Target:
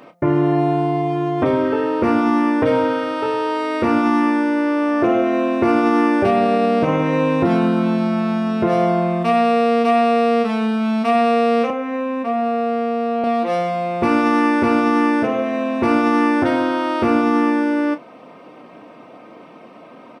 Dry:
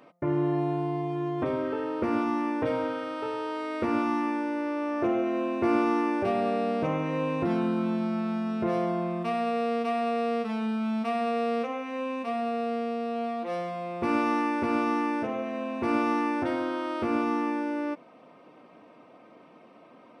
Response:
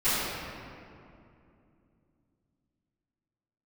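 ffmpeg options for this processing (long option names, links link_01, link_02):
-filter_complex "[0:a]asettb=1/sr,asplit=3[link_01][link_02][link_03];[link_01]atrim=end=11.704[link_04];[link_02]atrim=start=11.7:end=13.24,asetpts=PTS-STARTPTS,afade=type=in:duration=0.004:curve=qsin,afade=type=out:start_time=1.536:duration=0.004:curve=qsin,acrossover=split=630|2000[link_05][link_06][link_07];[link_05]acompressor=threshold=-34dB:ratio=4[link_08];[link_06]acompressor=threshold=-37dB:ratio=4[link_09];[link_07]acompressor=threshold=-59dB:ratio=4[link_10];[link_08][link_09][link_10]amix=inputs=3:normalize=0[link_11];[link_03]atrim=start=13.236[link_12];[link_04][link_11]acrossfade=duration=0.004:curve1=hsin:curve2=qsin[link_13];[link_13][link_12]acrossfade=duration=0.004:curve1=qsin:curve2=hsin,asplit=2[link_14][link_15];[link_15]adelay=30,volume=-11dB[link_16];[link_14][link_16]amix=inputs=2:normalize=0,alimiter=level_in=17.5dB:limit=-1dB:release=50:level=0:latency=1,volume=-6dB"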